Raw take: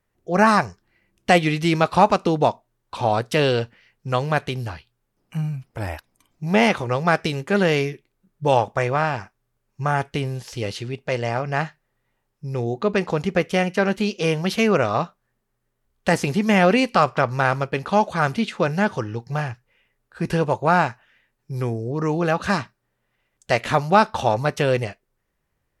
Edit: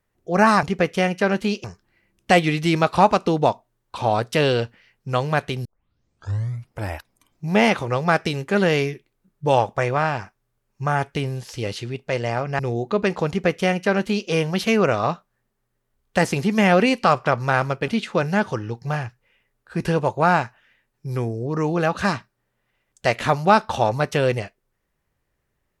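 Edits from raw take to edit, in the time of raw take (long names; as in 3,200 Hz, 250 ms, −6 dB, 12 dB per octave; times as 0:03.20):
0:04.64: tape start 1.05 s
0:11.58–0:12.50: remove
0:13.19–0:14.20: duplicate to 0:00.63
0:17.79–0:18.33: remove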